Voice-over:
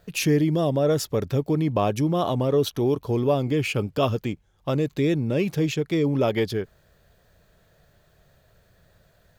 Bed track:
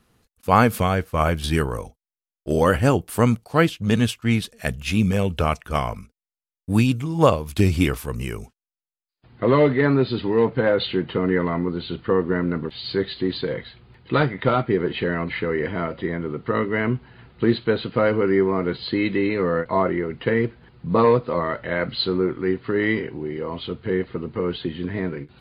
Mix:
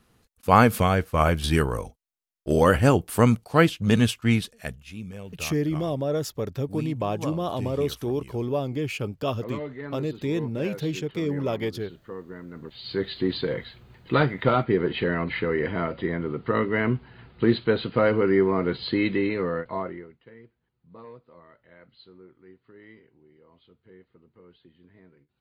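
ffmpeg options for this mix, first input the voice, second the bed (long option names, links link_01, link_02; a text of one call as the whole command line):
ffmpeg -i stem1.wav -i stem2.wav -filter_complex "[0:a]adelay=5250,volume=-5dB[link_01];[1:a]volume=16dB,afade=type=out:start_time=4.28:duration=0.56:silence=0.133352,afade=type=in:start_time=12.51:duration=0.72:silence=0.149624,afade=type=out:start_time=19.03:duration=1.15:silence=0.0446684[link_02];[link_01][link_02]amix=inputs=2:normalize=0" out.wav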